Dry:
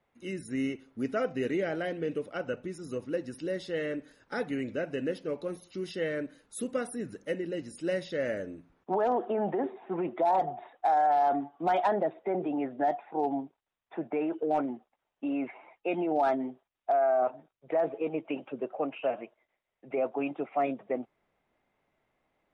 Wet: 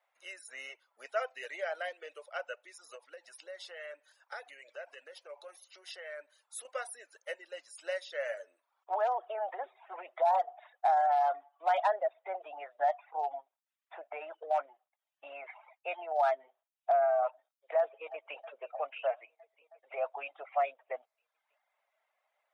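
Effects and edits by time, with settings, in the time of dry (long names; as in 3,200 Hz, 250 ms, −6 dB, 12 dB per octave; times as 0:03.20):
0:02.95–0:06.65: downward compressor, threshold −35 dBFS
0:17.79–0:18.36: delay throw 320 ms, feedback 75%, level −16.5 dB
whole clip: elliptic high-pass filter 600 Hz, stop band 80 dB; reverb reduction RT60 0.68 s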